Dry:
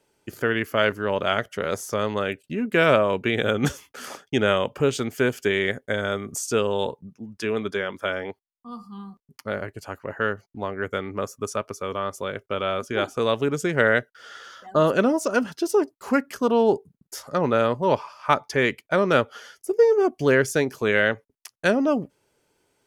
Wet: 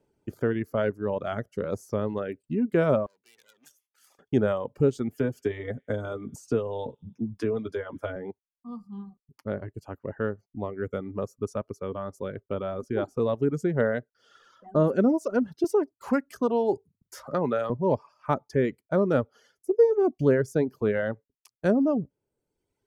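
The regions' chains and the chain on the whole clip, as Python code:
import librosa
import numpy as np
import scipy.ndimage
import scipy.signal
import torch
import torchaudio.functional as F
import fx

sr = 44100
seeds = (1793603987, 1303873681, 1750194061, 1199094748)

y = fx.chain(x, sr, fx.tube_stage(drive_db=26.0, bias=0.75),
    fx.differentiator(), at=(3.06, 4.19))
y = fx.chain(y, sr, fx.notch_comb(f0_hz=190.0),
    fx.echo_wet_highpass(ms=99, feedback_pct=44, hz=1800.0, wet_db=-21.5),
    fx.band_squash(depth_pct=70), at=(5.18, 8.16))
y = fx.chain(y, sr, fx.tilt_shelf(db=-6.0, hz=660.0),
    fx.hum_notches(base_hz=50, count=2),
    fx.band_squash(depth_pct=40), at=(15.64, 17.7))
y = fx.dynamic_eq(y, sr, hz=2800.0, q=1.7, threshold_db=-39.0, ratio=4.0, max_db=-6)
y = fx.dereverb_blind(y, sr, rt60_s=1.2)
y = fx.tilt_shelf(y, sr, db=9.0, hz=850.0)
y = y * 10.0 ** (-6.0 / 20.0)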